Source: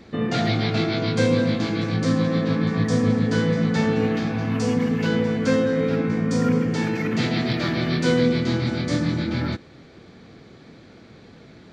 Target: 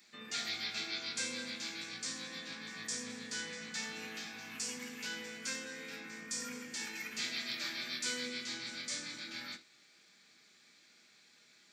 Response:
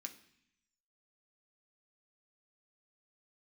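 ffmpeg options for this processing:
-filter_complex "[0:a]aderivative[link_01];[1:a]atrim=start_sample=2205,atrim=end_sample=3528[link_02];[link_01][link_02]afir=irnorm=-1:irlink=0,volume=4dB"

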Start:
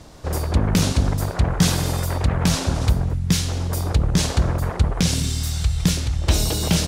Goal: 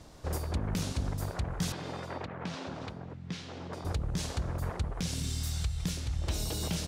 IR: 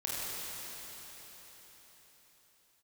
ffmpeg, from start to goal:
-filter_complex "[0:a]alimiter=limit=-14dB:level=0:latency=1:release=399,asettb=1/sr,asplit=3[link_01][link_02][link_03];[link_01]atrim=end=1.724[link_04];[link_02]atrim=start=1.72:end=3.85,asetpts=PTS-STARTPTS,afade=type=in:duration=0.004:curve=qsin,afade=type=out:start_time=2.126:duration=0.004:curve=qsin,highpass=190,lowpass=3400[link_05];[link_03]atrim=start=3.846[link_06];[link_04][link_05]acrossfade=duration=0.004:curve1=hsin:curve2=qsin[link_07];[link_07][link_06]acrossfade=duration=0.004:curve1=qsin:curve2=hsin,volume=-8.5dB"

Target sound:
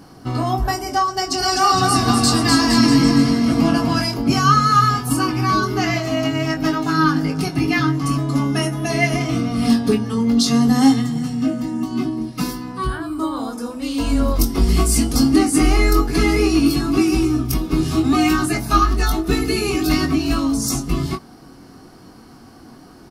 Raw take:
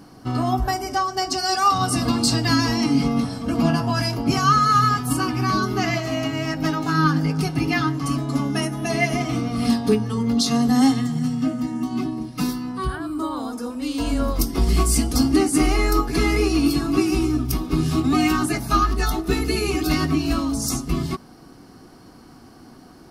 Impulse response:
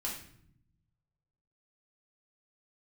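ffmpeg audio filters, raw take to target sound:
-filter_complex "[0:a]asplit=2[link_01][link_02];[link_02]adelay=22,volume=-6.5dB[link_03];[link_01][link_03]amix=inputs=2:normalize=0,asplit=3[link_04][link_05][link_06];[link_04]afade=type=out:start_time=1.39:duration=0.02[link_07];[link_05]aecho=1:1:250|462.5|643.1|796.7|927.2:0.631|0.398|0.251|0.158|0.1,afade=type=in:start_time=1.39:duration=0.02,afade=type=out:start_time=3.98:duration=0.02[link_08];[link_06]afade=type=in:start_time=3.98:duration=0.02[link_09];[link_07][link_08][link_09]amix=inputs=3:normalize=0,volume=2dB"

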